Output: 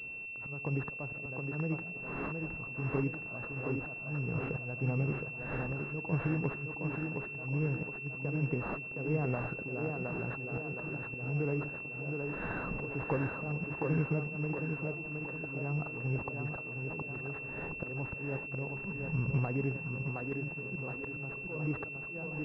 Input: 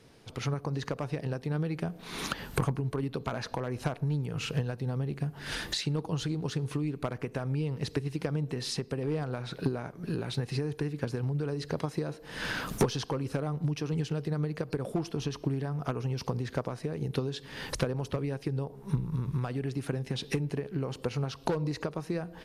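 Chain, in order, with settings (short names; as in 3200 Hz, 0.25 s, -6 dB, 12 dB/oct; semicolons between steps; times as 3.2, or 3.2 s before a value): auto swell 0.273 s; thinning echo 0.717 s, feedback 54%, high-pass 180 Hz, level -3 dB; pulse-width modulation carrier 2700 Hz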